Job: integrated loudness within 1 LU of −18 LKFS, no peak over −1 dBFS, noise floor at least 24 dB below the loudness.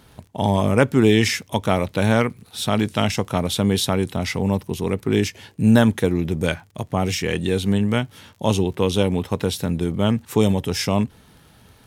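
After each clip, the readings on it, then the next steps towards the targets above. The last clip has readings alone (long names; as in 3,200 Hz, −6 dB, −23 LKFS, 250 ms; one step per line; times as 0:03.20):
crackle rate 29 per second; integrated loudness −21.0 LKFS; sample peak −2.5 dBFS; target loudness −18.0 LKFS
→ click removal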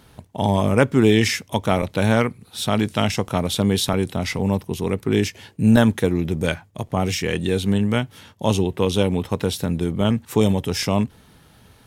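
crackle rate 0.67 per second; integrated loudness −21.0 LKFS; sample peak −2.5 dBFS; target loudness −18.0 LKFS
→ level +3 dB
brickwall limiter −1 dBFS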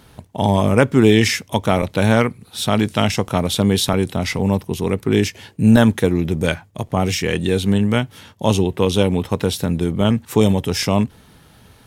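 integrated loudness −18.0 LKFS; sample peak −1.0 dBFS; background noise floor −50 dBFS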